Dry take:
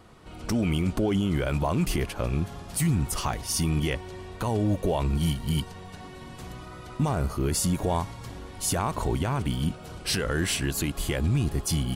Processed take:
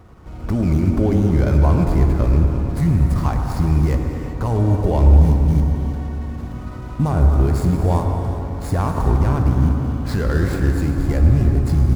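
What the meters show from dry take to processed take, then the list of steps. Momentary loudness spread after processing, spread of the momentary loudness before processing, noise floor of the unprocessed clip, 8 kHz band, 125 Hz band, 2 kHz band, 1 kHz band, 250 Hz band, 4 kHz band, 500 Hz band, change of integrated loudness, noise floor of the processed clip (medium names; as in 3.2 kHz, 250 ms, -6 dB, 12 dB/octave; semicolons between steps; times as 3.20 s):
10 LU, 15 LU, -43 dBFS, under -10 dB, +12.0 dB, +1.0 dB, +5.5 dB, +7.5 dB, no reading, +6.5 dB, +9.5 dB, -31 dBFS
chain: median filter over 15 samples; peaking EQ 61 Hz +12 dB 1.3 oct; gated-style reverb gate 420 ms flat, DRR 5 dB; dynamic bell 3 kHz, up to -5 dB, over -53 dBFS, Q 1.8; feedback echo behind a low-pass 112 ms, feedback 82%, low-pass 1.8 kHz, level -10 dB; trim +4 dB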